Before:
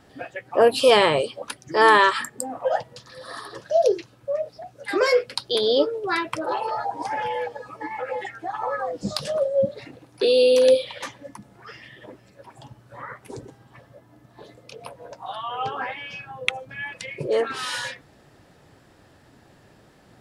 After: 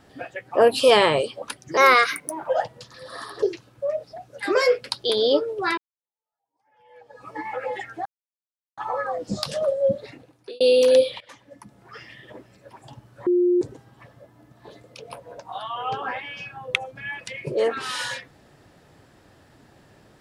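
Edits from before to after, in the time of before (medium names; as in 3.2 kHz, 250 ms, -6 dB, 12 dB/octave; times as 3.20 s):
1.77–2.63 s: speed 122%
3.58–3.88 s: delete
6.23–7.74 s: fade in exponential
8.51 s: insert silence 0.72 s
9.73–10.34 s: fade out
10.94–11.71 s: fade in, from -19.5 dB
13.00–13.35 s: bleep 355 Hz -15.5 dBFS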